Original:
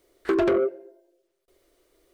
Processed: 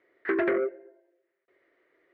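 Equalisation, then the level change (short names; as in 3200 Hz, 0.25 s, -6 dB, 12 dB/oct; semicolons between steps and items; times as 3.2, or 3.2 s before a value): HPF 170 Hz 12 dB/oct; dynamic EQ 1100 Hz, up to -4 dB, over -43 dBFS, Q 1.3; synth low-pass 1900 Hz, resonance Q 5.4; -4.5 dB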